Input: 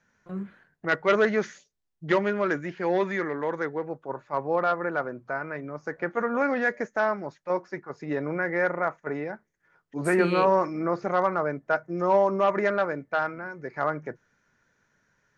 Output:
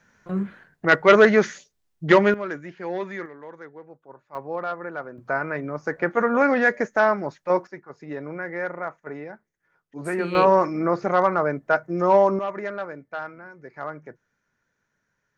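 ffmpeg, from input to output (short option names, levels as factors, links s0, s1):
-af "asetnsamples=n=441:p=0,asendcmd='2.34 volume volume -4.5dB;3.26 volume volume -12dB;4.35 volume volume -4.5dB;5.18 volume volume 6dB;7.67 volume volume -4dB;10.35 volume volume 4.5dB;12.39 volume volume -6dB',volume=2.51"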